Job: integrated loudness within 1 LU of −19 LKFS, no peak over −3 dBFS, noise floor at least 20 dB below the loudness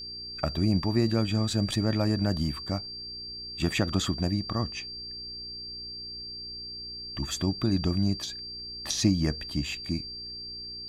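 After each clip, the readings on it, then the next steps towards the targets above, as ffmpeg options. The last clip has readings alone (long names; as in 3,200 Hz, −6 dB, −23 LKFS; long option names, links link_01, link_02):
mains hum 60 Hz; hum harmonics up to 420 Hz; level of the hum −53 dBFS; interfering tone 4,700 Hz; level of the tone −37 dBFS; integrated loudness −30.0 LKFS; sample peak −11.0 dBFS; target loudness −19.0 LKFS
→ -af "bandreject=frequency=60:width_type=h:width=4,bandreject=frequency=120:width_type=h:width=4,bandreject=frequency=180:width_type=h:width=4,bandreject=frequency=240:width_type=h:width=4,bandreject=frequency=300:width_type=h:width=4,bandreject=frequency=360:width_type=h:width=4,bandreject=frequency=420:width_type=h:width=4"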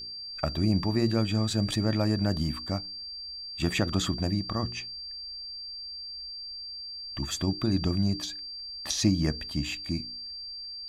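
mains hum none found; interfering tone 4,700 Hz; level of the tone −37 dBFS
→ -af "bandreject=frequency=4700:width=30"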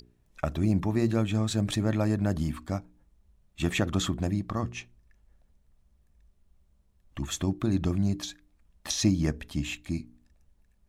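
interfering tone none found; integrated loudness −29.5 LKFS; sample peak −10.5 dBFS; target loudness −19.0 LKFS
→ -af "volume=10.5dB,alimiter=limit=-3dB:level=0:latency=1"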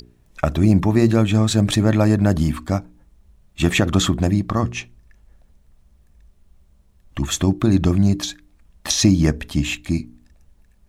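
integrated loudness −19.0 LKFS; sample peak −3.0 dBFS; background noise floor −57 dBFS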